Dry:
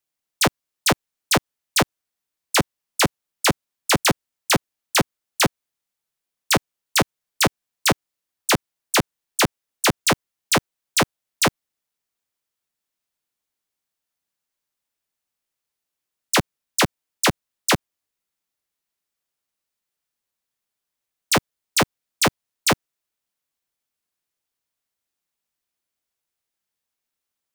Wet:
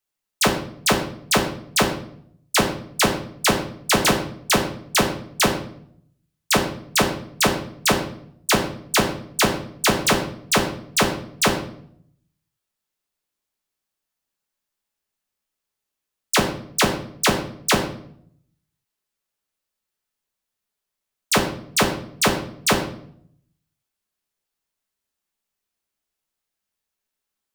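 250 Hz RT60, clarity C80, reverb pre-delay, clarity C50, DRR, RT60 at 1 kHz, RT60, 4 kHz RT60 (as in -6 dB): 0.85 s, 11.0 dB, 5 ms, 8.0 dB, 2.0 dB, 0.55 s, 0.65 s, 0.50 s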